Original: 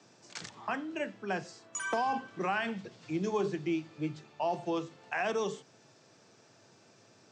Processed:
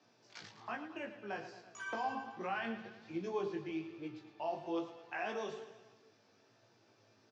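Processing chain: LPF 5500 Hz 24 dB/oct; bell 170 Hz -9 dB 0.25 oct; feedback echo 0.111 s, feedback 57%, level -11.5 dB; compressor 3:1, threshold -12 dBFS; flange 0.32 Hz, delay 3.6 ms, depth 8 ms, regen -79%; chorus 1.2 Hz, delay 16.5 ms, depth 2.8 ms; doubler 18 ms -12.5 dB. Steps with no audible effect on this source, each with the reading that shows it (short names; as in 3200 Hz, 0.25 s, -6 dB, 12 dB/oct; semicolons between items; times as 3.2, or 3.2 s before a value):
compressor, threshold -12 dBFS: input peak -20.0 dBFS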